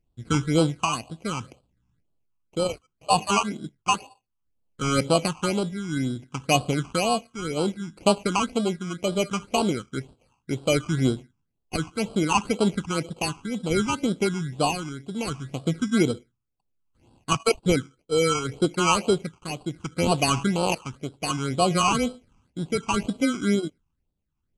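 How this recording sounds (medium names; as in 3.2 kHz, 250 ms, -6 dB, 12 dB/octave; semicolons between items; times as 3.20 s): aliases and images of a low sample rate 1.8 kHz, jitter 0%; tremolo triangle 0.65 Hz, depth 65%; phasing stages 8, 2 Hz, lowest notch 530–2000 Hz; AAC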